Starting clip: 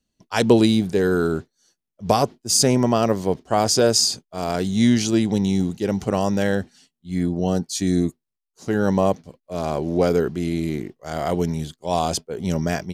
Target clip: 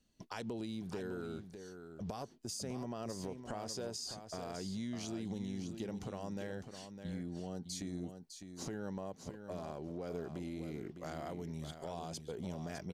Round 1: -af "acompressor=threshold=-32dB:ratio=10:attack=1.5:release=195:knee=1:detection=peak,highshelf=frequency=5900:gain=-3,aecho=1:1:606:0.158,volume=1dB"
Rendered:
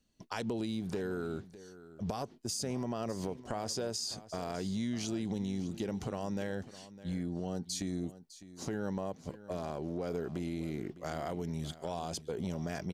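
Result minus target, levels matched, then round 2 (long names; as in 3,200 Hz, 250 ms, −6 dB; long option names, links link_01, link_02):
downward compressor: peak gain reduction −6 dB; echo-to-direct −7.5 dB
-af "acompressor=threshold=-38.5dB:ratio=10:attack=1.5:release=195:knee=1:detection=peak,highshelf=frequency=5900:gain=-3,aecho=1:1:606:0.376,volume=1dB"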